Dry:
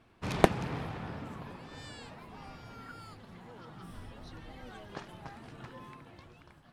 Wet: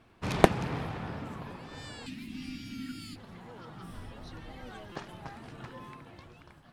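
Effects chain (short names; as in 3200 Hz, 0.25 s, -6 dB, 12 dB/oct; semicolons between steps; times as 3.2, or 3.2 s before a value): 2.06–3.16 EQ curve 150 Hz 0 dB, 270 Hz +15 dB, 450 Hz -18 dB, 1000 Hz -18 dB, 2500 Hz +8 dB; stuck buffer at 4.92, samples 256, times 5; gain +2.5 dB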